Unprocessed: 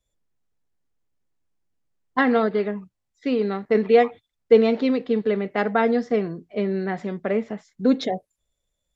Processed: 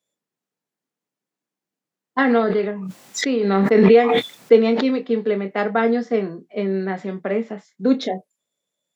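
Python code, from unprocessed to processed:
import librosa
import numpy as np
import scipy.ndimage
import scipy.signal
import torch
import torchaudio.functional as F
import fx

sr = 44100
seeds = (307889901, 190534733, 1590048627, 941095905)

y = scipy.signal.sosfilt(scipy.signal.butter(4, 170.0, 'highpass', fs=sr, output='sos'), x)
y = fx.doubler(y, sr, ms=26.0, db=-9.5)
y = fx.pre_swell(y, sr, db_per_s=21.0, at=(2.24, 4.85))
y = y * librosa.db_to_amplitude(1.0)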